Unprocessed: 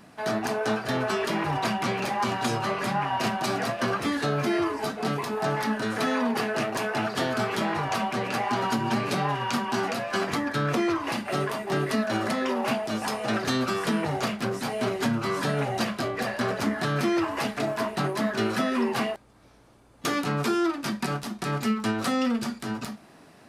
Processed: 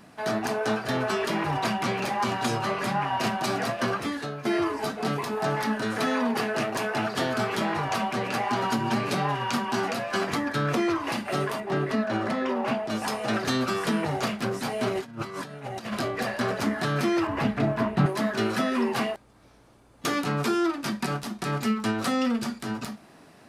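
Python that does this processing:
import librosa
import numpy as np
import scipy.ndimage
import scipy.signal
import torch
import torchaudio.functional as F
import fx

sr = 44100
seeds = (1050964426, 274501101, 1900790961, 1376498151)

y = fx.lowpass(x, sr, hz=2400.0, slope=6, at=(11.6, 12.9))
y = fx.over_compress(y, sr, threshold_db=-33.0, ratio=-0.5, at=(14.95, 15.99))
y = fx.bass_treble(y, sr, bass_db=11, treble_db=-12, at=(17.27, 18.06))
y = fx.edit(y, sr, fx.fade_out_to(start_s=3.86, length_s=0.59, floor_db=-14.0), tone=tone)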